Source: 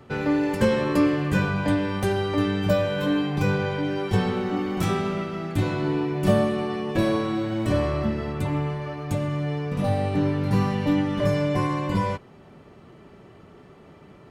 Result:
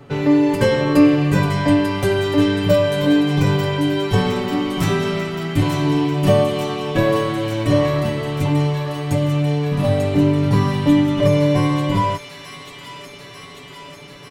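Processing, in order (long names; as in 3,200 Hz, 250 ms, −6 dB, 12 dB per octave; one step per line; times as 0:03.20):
comb filter 7.1 ms, depth 77%
on a send: delay with a high-pass on its return 892 ms, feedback 74%, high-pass 2,100 Hz, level −5 dB
on the sum: level +4 dB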